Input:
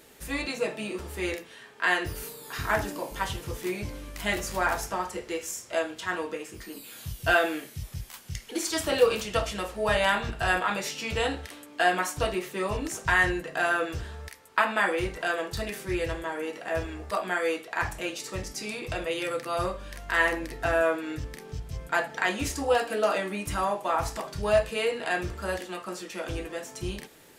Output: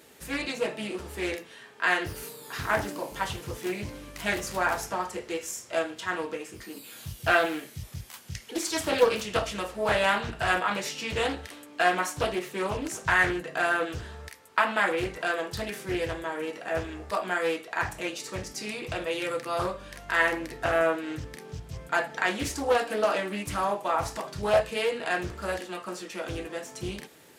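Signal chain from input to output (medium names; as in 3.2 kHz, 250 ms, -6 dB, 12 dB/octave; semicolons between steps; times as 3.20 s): high-pass 74 Hz 12 dB/octave; loudspeaker Doppler distortion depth 0.47 ms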